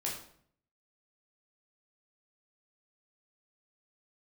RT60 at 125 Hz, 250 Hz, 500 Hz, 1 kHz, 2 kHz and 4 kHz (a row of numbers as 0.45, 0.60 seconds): 0.85, 0.70, 0.65, 0.55, 0.50, 0.45 seconds